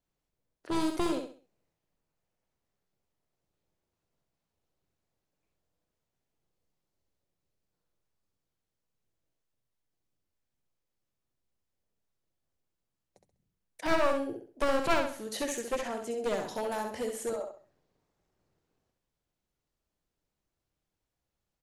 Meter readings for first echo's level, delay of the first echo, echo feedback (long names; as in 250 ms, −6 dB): −5.5 dB, 66 ms, 32%